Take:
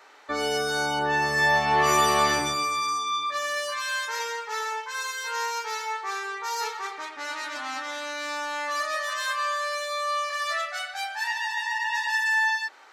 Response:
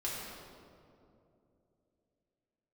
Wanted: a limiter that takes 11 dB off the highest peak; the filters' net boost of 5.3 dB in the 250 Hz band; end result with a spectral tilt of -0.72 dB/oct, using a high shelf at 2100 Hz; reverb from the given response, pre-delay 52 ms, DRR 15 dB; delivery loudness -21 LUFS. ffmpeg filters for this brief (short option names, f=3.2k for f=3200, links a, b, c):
-filter_complex "[0:a]equalizer=f=250:t=o:g=7,highshelf=f=2.1k:g=7.5,alimiter=limit=-17.5dB:level=0:latency=1,asplit=2[a][b];[1:a]atrim=start_sample=2205,adelay=52[c];[b][c]afir=irnorm=-1:irlink=0,volume=-18.5dB[d];[a][d]amix=inputs=2:normalize=0,volume=4.5dB"